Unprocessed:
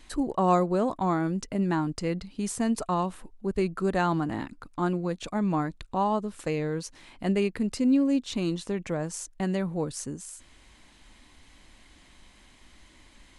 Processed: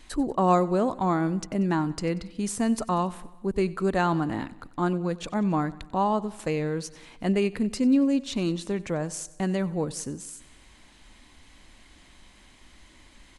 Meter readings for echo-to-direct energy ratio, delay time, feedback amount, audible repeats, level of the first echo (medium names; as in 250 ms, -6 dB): -18.0 dB, 93 ms, 58%, 4, -20.0 dB